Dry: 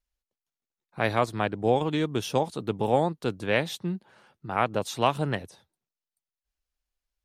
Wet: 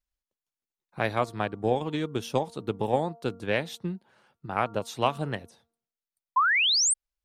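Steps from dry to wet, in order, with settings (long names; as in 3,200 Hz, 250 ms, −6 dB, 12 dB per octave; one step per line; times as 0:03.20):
hum removal 231.4 Hz, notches 6
sound drawn into the spectrogram rise, 0:06.36–0:06.94, 970–9,200 Hz −19 dBFS
transient designer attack +4 dB, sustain −1 dB
level −4 dB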